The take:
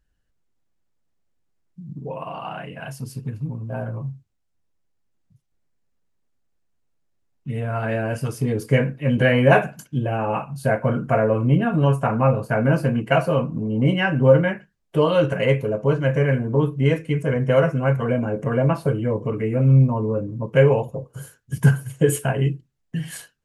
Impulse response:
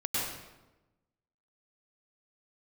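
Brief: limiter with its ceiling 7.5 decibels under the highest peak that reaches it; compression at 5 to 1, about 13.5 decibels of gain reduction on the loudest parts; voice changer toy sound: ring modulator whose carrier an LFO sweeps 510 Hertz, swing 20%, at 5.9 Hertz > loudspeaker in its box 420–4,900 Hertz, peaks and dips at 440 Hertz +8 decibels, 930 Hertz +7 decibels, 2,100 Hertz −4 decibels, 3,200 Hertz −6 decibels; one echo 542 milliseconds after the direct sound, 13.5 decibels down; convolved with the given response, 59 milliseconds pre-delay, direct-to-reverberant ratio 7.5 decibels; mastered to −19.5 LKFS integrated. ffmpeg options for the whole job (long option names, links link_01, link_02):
-filter_complex "[0:a]acompressor=threshold=-25dB:ratio=5,alimiter=limit=-20dB:level=0:latency=1,aecho=1:1:542:0.211,asplit=2[link_01][link_02];[1:a]atrim=start_sample=2205,adelay=59[link_03];[link_02][link_03]afir=irnorm=-1:irlink=0,volume=-15dB[link_04];[link_01][link_04]amix=inputs=2:normalize=0,aeval=exprs='val(0)*sin(2*PI*510*n/s+510*0.2/5.9*sin(2*PI*5.9*n/s))':channel_layout=same,highpass=420,equalizer=frequency=440:width_type=q:width=4:gain=8,equalizer=frequency=930:width_type=q:width=4:gain=7,equalizer=frequency=2100:width_type=q:width=4:gain=-4,equalizer=frequency=3200:width_type=q:width=4:gain=-6,lowpass=frequency=4900:width=0.5412,lowpass=frequency=4900:width=1.3066,volume=11.5dB"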